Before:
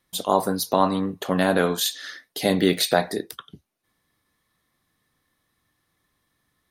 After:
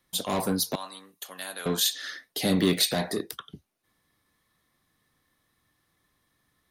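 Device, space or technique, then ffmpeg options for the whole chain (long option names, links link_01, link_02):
one-band saturation: -filter_complex "[0:a]asettb=1/sr,asplit=3[link_01][link_02][link_03];[link_01]atrim=end=0.754[link_04];[link_02]atrim=start=0.75:end=1.66,asetpts=PTS-STARTPTS,afade=type=in:duration=0.004:curve=qsin,afade=type=out:start_time=0.906:duration=0.004:curve=qsin,aderivative[link_05];[link_03]atrim=start=1.656[link_06];[link_04][link_05]acrossfade=duration=0.004:curve1=hsin:curve2=qsin[link_07];[link_07][link_06]acrossfade=duration=0.004:curve1=qsin:curve2=hsin,acrossover=split=290|3100[link_08][link_09][link_10];[link_09]asoftclip=type=tanh:threshold=-27dB[link_11];[link_08][link_11][link_10]amix=inputs=3:normalize=0"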